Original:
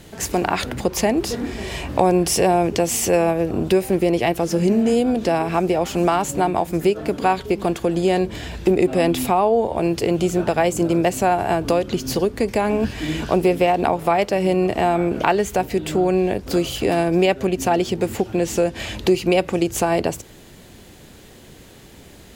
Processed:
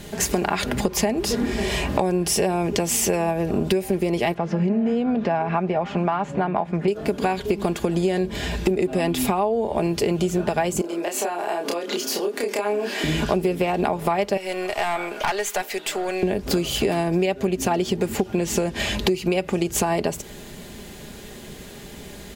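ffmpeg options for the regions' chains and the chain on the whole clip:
-filter_complex "[0:a]asettb=1/sr,asplit=3[a][b][c];[a]atrim=end=4.344[d];[b]atrim=start=4.34:end=6.88,asetpts=PTS-STARTPTS,afade=t=in:d=0.004:c=qsin,afade=t=out:st=2.536:d=0.004:c=qsin,highpass=120,lowpass=2k,equalizer=f=350:w=1.5:g=-7[e];[c]atrim=start=6.876[f];[d][e]acrossfade=d=0.004:c1=hsin:c2=qsin[g];[g][f]acrossfade=d=0.004:c1=qsin:c2=hsin,asettb=1/sr,asplit=3[h][i][j];[h]atrim=end=10.814[k];[i]atrim=start=10.81:end=13.04,asetpts=PTS-STARTPTS,afade=t=in:d=0.004:c=qsin,afade=t=out:st=2.226:d=0.004:c=qsin,highpass=f=310:w=0.5412,highpass=f=310:w=1.3066,acompressor=threshold=-28dB:ratio=6:attack=3.2:release=140:knee=1:detection=peak,asplit=2[l][m];[m]adelay=29,volume=-2.5dB[n];[l][n]amix=inputs=2:normalize=0,atrim=end_sample=98343[o];[j]atrim=start=13.036[p];[k][o]acrossfade=d=0.004:c1=hsin:c2=qsin[q];[q][p]acrossfade=d=0.004:c1=qsin:c2=hsin,asettb=1/sr,asplit=3[r][s][t];[r]atrim=end=14.374[u];[s]atrim=start=14.37:end=16.23,asetpts=PTS-STARTPTS,afade=t=in:d=0.004:c=qsin,afade=t=out:st=1.856:d=0.004:c=qsin,highpass=820,aeval=exprs='(tanh(10*val(0)+0.3)-tanh(0.3))/10':c=same[v];[t]atrim=start=16.226[w];[u][v]acrossfade=d=0.004:c1=hsin:c2=qsin[x];[x][w]acrossfade=d=0.004:c1=qsin:c2=hsin,aecho=1:1:4.9:0.44,acompressor=threshold=-23dB:ratio=6,bandreject=f=1.3k:w=25,volume=4.5dB"

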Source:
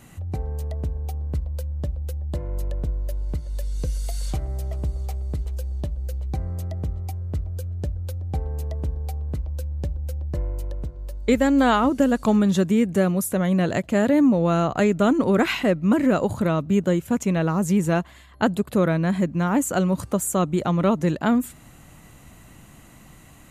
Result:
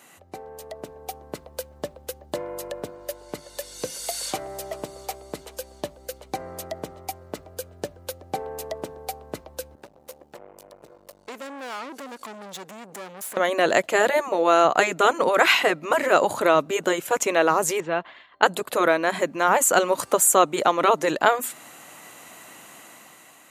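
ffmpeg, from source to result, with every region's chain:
-filter_complex "[0:a]asettb=1/sr,asplit=3[a][b][c];[a]atrim=end=9.754[d];[b]atrim=start=9.75:end=13.37,asetpts=PTS-STARTPTS,afade=t=in:d=0.004:c=qsin,afade=t=out:st=3.616:d=0.004:c=qsin,equalizer=f=78:t=o:w=0.65:g=-13.5,acompressor=threshold=-34dB:ratio=2.5:attack=3.2:release=140:knee=1:detection=peak,aeval=exprs='(tanh(89.1*val(0)+0.6)-tanh(0.6))/89.1':c=same[e];[c]atrim=start=13.366[f];[d][e]acrossfade=d=0.004:c1=hsin:c2=qsin[g];[g][f]acrossfade=d=0.004:c1=qsin:c2=hsin,asettb=1/sr,asplit=3[h][i][j];[h]atrim=end=17.804[k];[i]atrim=start=17.8:end=18.43,asetpts=PTS-STARTPTS,afade=t=in:d=0.004:c=qsin,afade=t=out:st=0.626:d=0.004:c=qsin,agate=range=-33dB:threshold=-44dB:ratio=3:release=100:detection=peak,lowpass=f=3.7k:w=0.5412,lowpass=f=3.7k:w=1.3066,acompressor=threshold=-38dB:ratio=1.5:attack=3.2:release=140:knee=1:detection=peak[l];[j]atrim=start=18.426[m];[k][l]acrossfade=d=0.004:c1=hsin:c2=qsin[n];[n][m]acrossfade=d=0.004:c1=qsin:c2=hsin,afftfilt=real='re*lt(hypot(re,im),0.794)':imag='im*lt(hypot(re,im),0.794)':win_size=1024:overlap=0.75,highpass=480,dynaudnorm=f=380:g=5:m=8dB,volume=1.5dB"

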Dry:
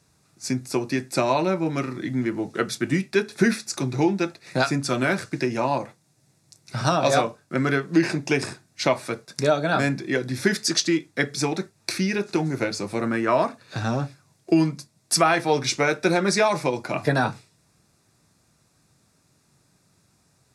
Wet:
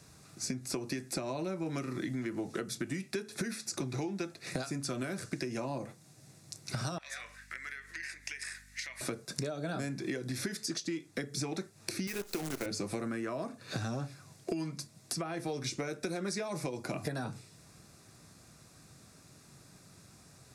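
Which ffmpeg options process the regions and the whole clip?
-filter_complex "[0:a]asettb=1/sr,asplit=3[a][b][c];[a]atrim=end=6.984[d];[b]atrim=start=6.98:end=9.01,asetpts=PTS-STARTPTS,afade=t=in:d=0.004:c=qsin,afade=t=out:st=2.026:d=0.004:c=qsin,acompressor=threshold=-36dB:ratio=3:attack=3.2:release=140:knee=1:detection=peak,highpass=f=1.9k:t=q:w=6.4,aeval=exprs='val(0)+0.000562*(sin(2*PI*50*n/s)+sin(2*PI*2*50*n/s)/2+sin(2*PI*3*50*n/s)/3+sin(2*PI*4*50*n/s)/4+sin(2*PI*5*50*n/s)/5)':c=same[e];[c]atrim=start=9.006[f];[d][e]acrossfade=d=0.004:c1=hsin:c2=qsin[g];[g][f]acrossfade=d=0.004:c1=qsin:c2=hsin,asettb=1/sr,asplit=3[h][i][j];[h]atrim=end=12.074[k];[i]atrim=start=12.07:end=12.66,asetpts=PTS-STARTPTS,afade=t=in:d=0.004:c=qsin,afade=t=out:st=0.586:d=0.004:c=qsin,highpass=f=540:p=1,acrusher=bits=6:dc=4:mix=0:aa=0.000001[l];[j]atrim=start=12.656[m];[k][l]acrossfade=d=0.004:c1=hsin:c2=qsin[n];[n][m]acrossfade=d=0.004:c1=qsin:c2=hsin,acompressor=threshold=-32dB:ratio=4,bandreject=f=900:w=12,acrossover=split=490|6200[o][p][q];[o]acompressor=threshold=-42dB:ratio=4[r];[p]acompressor=threshold=-49dB:ratio=4[s];[q]acompressor=threshold=-48dB:ratio=4[t];[r][s][t]amix=inputs=3:normalize=0,volume=6dB"

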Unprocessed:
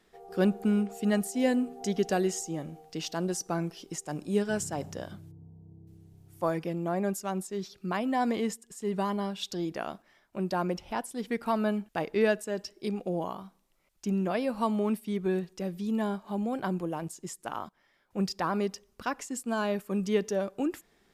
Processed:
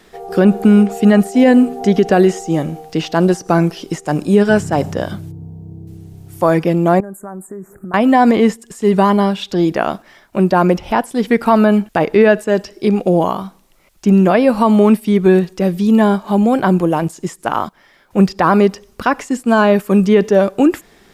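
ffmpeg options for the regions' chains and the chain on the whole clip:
-filter_complex "[0:a]asettb=1/sr,asplit=3[a][b][c];[a]atrim=end=7.004[d];[b]atrim=start=7:end=7.94,asetpts=PTS-STARTPTS,afade=t=in:d=0.004:c=qsin,afade=t=out:st=0.936:d=0.004:c=qsin,equalizer=f=2.6k:t=o:w=0.26:g=9,acompressor=threshold=-44dB:ratio=12:attack=3.2:release=140:knee=1:detection=peak,asuperstop=centerf=3800:order=12:qfactor=0.64[e];[c]atrim=start=7.936[f];[d][e]acrossfade=d=0.004:c1=hsin:c2=qsin[g];[g][f]acrossfade=d=0.004:c1=qsin:c2=hsin,acrossover=split=2700[h][i];[i]acompressor=threshold=-52dB:ratio=4:attack=1:release=60[j];[h][j]amix=inputs=2:normalize=0,alimiter=level_in=19.5dB:limit=-1dB:release=50:level=0:latency=1,volume=-1dB"

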